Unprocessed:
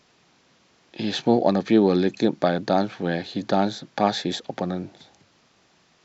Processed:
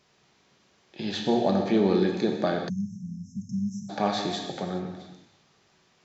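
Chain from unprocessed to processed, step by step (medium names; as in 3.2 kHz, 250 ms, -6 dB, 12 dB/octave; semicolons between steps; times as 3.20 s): gated-style reverb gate 450 ms falling, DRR 1 dB; spectral selection erased 2.69–3.90 s, 240–5200 Hz; trim -6 dB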